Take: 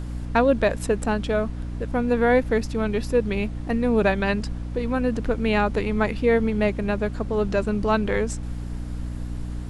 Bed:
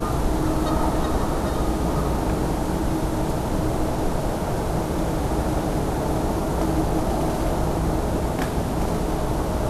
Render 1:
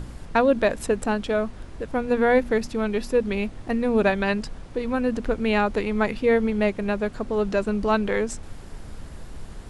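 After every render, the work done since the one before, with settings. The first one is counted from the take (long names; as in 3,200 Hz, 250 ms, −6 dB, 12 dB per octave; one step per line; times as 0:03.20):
hum removal 60 Hz, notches 5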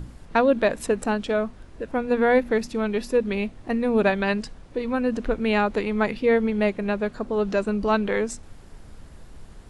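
noise reduction from a noise print 6 dB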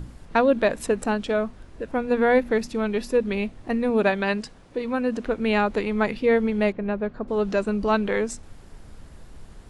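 0:03.90–0:05.40: low-shelf EQ 83 Hz −11 dB
0:06.72–0:07.28: head-to-tape spacing loss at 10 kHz 28 dB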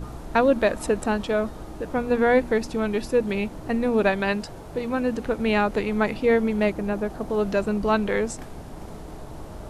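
mix in bed −16 dB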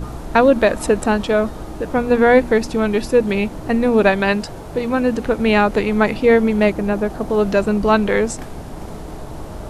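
level +7 dB
brickwall limiter −2 dBFS, peak gain reduction 1.5 dB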